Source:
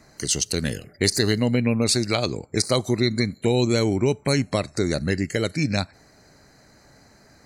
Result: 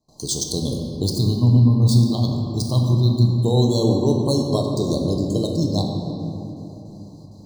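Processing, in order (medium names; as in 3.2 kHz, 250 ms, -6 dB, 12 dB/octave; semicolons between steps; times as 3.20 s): median filter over 3 samples; Chebyshev band-stop 1.1–3.3 kHz, order 5; gate with hold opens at -45 dBFS; 1.03–3.28 s: ten-band graphic EQ 125 Hz +7 dB, 500 Hz -12 dB, 4 kHz -4 dB, 8 kHz -7 dB; reverberation RT60 3.3 s, pre-delay 7 ms, DRR 0.5 dB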